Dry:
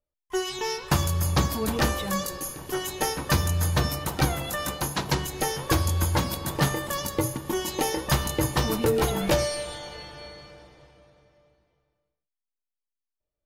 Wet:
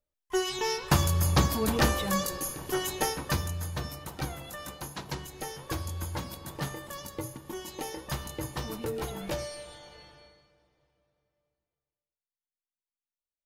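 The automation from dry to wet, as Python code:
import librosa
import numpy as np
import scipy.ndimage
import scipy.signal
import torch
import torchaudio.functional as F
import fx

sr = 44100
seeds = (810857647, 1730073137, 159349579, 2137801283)

y = fx.gain(x, sr, db=fx.line((2.92, -0.5), (3.68, -11.0), (10.1, -11.0), (10.5, -19.5)))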